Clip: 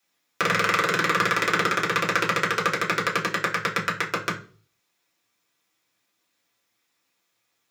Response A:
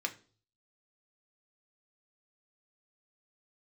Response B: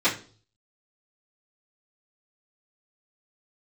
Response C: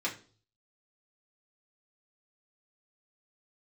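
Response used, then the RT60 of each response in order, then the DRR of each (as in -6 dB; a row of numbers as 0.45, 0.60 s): C; 0.40, 0.40, 0.40 s; 3.5, -14.0, -5.0 dB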